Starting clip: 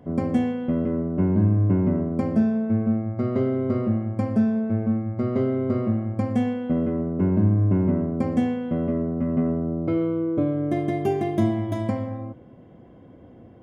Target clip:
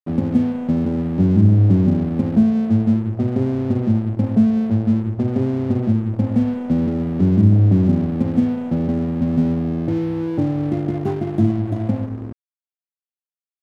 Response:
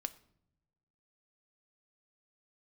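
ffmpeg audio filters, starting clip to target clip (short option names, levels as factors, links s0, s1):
-filter_complex "[0:a]afwtdn=0.0631,acrossover=split=180|310|980[s0][s1][s2][s3];[s2]acompressor=threshold=0.00891:ratio=6[s4];[s0][s1][s4][s3]amix=inputs=4:normalize=0,aeval=exprs='sgn(val(0))*max(abs(val(0))-0.0075,0)':c=same,volume=2.37"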